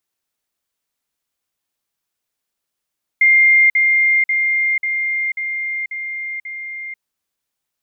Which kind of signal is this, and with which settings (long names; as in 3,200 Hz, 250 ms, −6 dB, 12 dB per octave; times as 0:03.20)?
level staircase 2,110 Hz −8 dBFS, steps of −3 dB, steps 7, 0.49 s 0.05 s